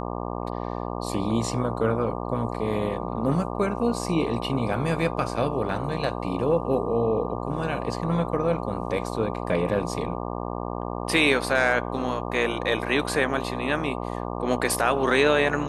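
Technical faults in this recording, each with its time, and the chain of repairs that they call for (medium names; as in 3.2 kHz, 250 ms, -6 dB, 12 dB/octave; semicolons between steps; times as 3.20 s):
buzz 60 Hz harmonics 20 -31 dBFS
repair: de-hum 60 Hz, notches 20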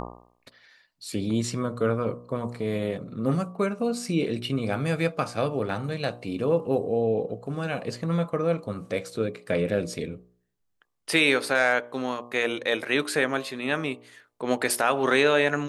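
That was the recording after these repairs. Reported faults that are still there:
nothing left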